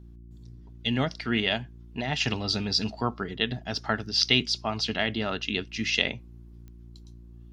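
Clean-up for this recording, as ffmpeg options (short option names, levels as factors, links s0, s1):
-af "adeclick=t=4,bandreject=f=58:t=h:w=4,bandreject=f=116:t=h:w=4,bandreject=f=174:t=h:w=4,bandreject=f=232:t=h:w=4,bandreject=f=290:t=h:w=4,bandreject=f=348:t=h:w=4"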